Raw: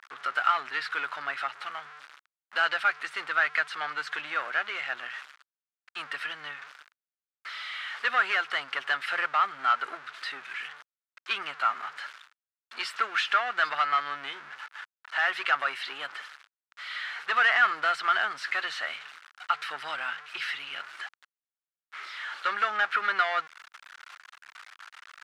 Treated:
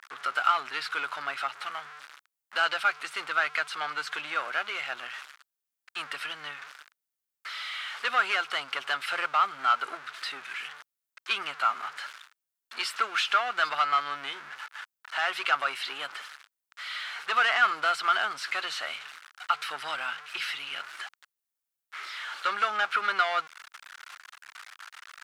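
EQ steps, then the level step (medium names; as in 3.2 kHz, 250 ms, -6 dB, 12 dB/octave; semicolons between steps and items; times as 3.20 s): dynamic bell 1.8 kHz, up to -8 dB, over -44 dBFS, Q 4.8; treble shelf 7.6 kHz +10.5 dB; +1.0 dB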